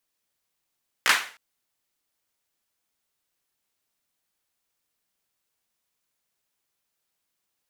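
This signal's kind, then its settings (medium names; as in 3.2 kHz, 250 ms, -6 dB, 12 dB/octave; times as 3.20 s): hand clap length 0.31 s, bursts 3, apart 16 ms, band 1.7 kHz, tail 0.40 s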